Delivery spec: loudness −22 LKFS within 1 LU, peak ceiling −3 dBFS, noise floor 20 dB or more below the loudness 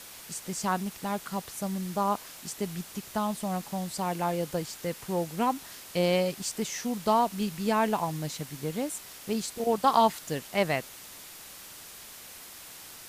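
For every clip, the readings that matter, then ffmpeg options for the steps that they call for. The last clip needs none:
background noise floor −47 dBFS; target noise floor −50 dBFS; integrated loudness −30.0 LKFS; sample peak −8.5 dBFS; target loudness −22.0 LKFS
→ -af "afftdn=noise_reduction=6:noise_floor=-47"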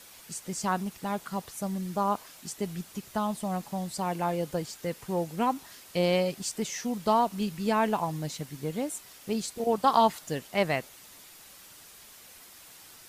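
background noise floor −51 dBFS; integrated loudness −30.5 LKFS; sample peak −8.5 dBFS; target loudness −22.0 LKFS
→ -af "volume=8.5dB,alimiter=limit=-3dB:level=0:latency=1"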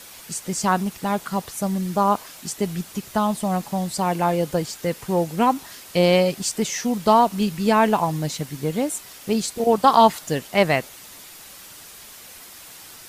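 integrated loudness −22.0 LKFS; sample peak −3.0 dBFS; background noise floor −43 dBFS

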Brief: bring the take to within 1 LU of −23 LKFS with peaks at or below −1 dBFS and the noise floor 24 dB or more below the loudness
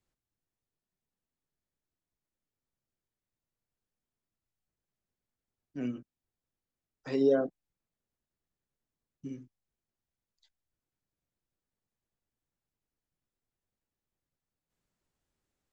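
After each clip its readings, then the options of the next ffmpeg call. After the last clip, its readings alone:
integrated loudness −31.0 LKFS; sample peak −15.5 dBFS; target loudness −23.0 LKFS
→ -af "volume=8dB"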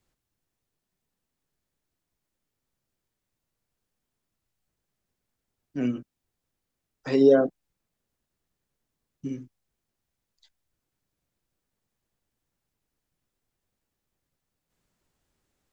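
integrated loudness −23.0 LKFS; sample peak −7.5 dBFS; background noise floor −84 dBFS

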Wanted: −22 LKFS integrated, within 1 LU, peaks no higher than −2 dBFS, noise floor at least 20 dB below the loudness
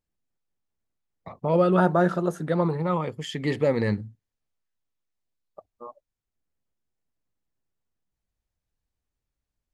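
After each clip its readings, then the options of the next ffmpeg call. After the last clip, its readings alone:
integrated loudness −24.5 LKFS; sample peak −7.5 dBFS; target loudness −22.0 LKFS
→ -af "volume=2.5dB"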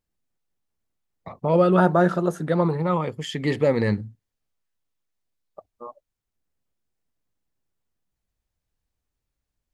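integrated loudness −22.0 LKFS; sample peak −5.0 dBFS; background noise floor −84 dBFS

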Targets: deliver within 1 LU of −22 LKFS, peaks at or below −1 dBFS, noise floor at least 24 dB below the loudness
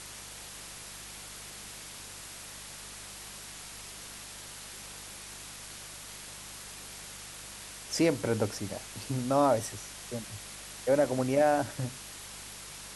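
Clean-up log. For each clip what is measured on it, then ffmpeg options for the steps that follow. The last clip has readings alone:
mains hum 50 Hz; hum harmonics up to 200 Hz; level of the hum −54 dBFS; background noise floor −46 dBFS; target noise floor −59 dBFS; integrated loudness −34.5 LKFS; sample peak −13.5 dBFS; target loudness −22.0 LKFS
→ -af "bandreject=frequency=50:width_type=h:width=4,bandreject=frequency=100:width_type=h:width=4,bandreject=frequency=150:width_type=h:width=4,bandreject=frequency=200:width_type=h:width=4"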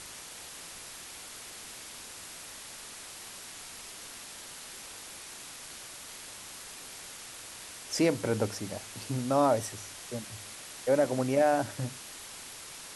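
mains hum none found; background noise floor −46 dBFS; target noise floor −59 dBFS
→ -af "afftdn=noise_reduction=13:noise_floor=-46"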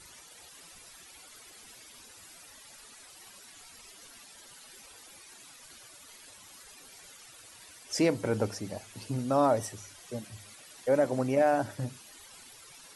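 background noise floor −53 dBFS; target noise floor −54 dBFS
→ -af "afftdn=noise_reduction=6:noise_floor=-53"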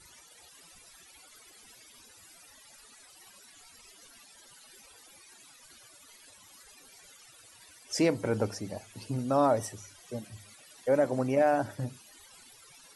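background noise floor −56 dBFS; integrated loudness −30.0 LKFS; sample peak −13.5 dBFS; target loudness −22.0 LKFS
→ -af "volume=8dB"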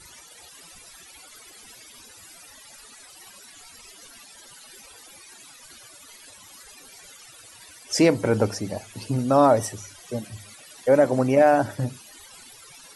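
integrated loudness −22.0 LKFS; sample peak −5.5 dBFS; background noise floor −48 dBFS

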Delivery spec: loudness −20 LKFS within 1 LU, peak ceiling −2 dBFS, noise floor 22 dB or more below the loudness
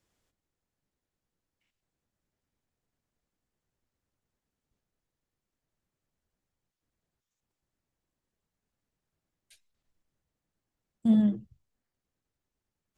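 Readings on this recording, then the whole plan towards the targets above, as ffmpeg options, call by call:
integrated loudness −26.0 LKFS; sample peak −14.5 dBFS; target loudness −20.0 LKFS
→ -af "volume=6dB"

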